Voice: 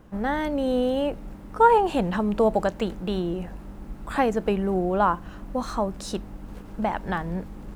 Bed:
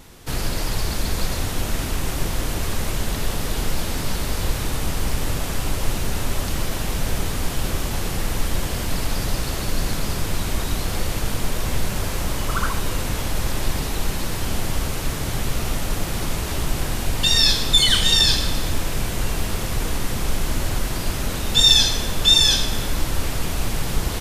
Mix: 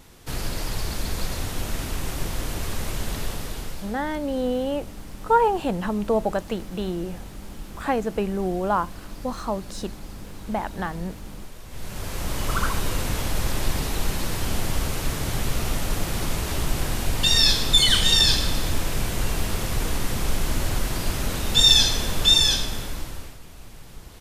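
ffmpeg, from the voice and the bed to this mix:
-filter_complex "[0:a]adelay=3700,volume=0.841[s0];[1:a]volume=3.98,afade=t=out:st=3.18:d=0.8:silence=0.211349,afade=t=in:st=11.69:d=0.82:silence=0.149624,afade=t=out:st=22.21:d=1.17:silence=0.11885[s1];[s0][s1]amix=inputs=2:normalize=0"

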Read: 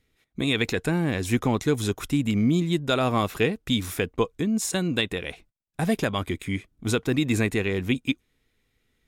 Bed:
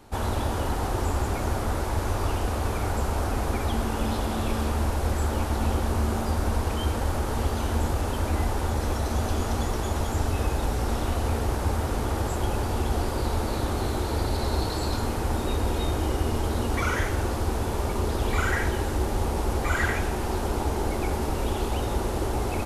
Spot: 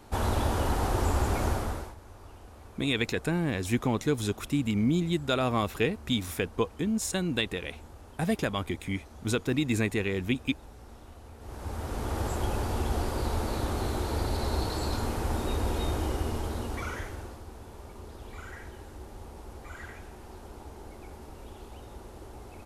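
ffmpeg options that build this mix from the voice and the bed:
-filter_complex "[0:a]adelay=2400,volume=0.631[s0];[1:a]volume=8.41,afade=t=out:st=1.45:d=0.5:silence=0.0794328,afade=t=in:st=11.38:d=0.88:silence=0.112202,afade=t=out:st=15.92:d=1.51:silence=0.177828[s1];[s0][s1]amix=inputs=2:normalize=0"

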